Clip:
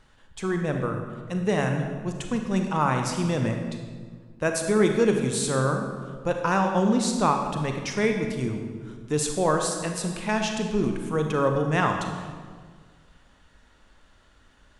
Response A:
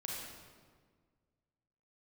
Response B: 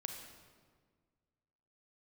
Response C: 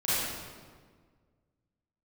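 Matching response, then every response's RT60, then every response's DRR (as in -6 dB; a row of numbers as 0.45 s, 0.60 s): B; 1.7 s, 1.7 s, 1.7 s; -3.5 dB, 3.5 dB, -13.0 dB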